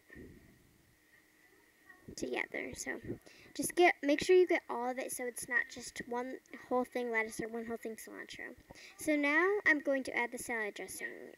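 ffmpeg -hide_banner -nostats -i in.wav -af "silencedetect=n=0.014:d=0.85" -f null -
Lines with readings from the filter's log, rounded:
silence_start: 0.00
silence_end: 2.18 | silence_duration: 2.18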